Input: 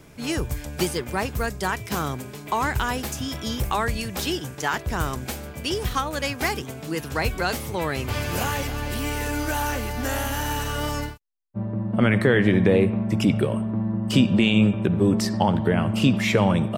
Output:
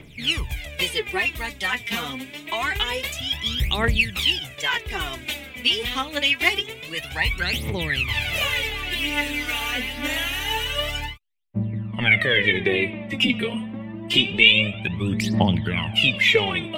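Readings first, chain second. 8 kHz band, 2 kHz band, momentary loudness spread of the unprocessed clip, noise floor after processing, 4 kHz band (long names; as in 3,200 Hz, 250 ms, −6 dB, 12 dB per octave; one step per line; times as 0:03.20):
−3.0 dB, +7.5 dB, 10 LU, −41 dBFS, +10.5 dB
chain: phase shifter 0.26 Hz, delay 4.4 ms, feedback 77%
flat-topped bell 2,700 Hz +14.5 dB 1.2 octaves
level −7 dB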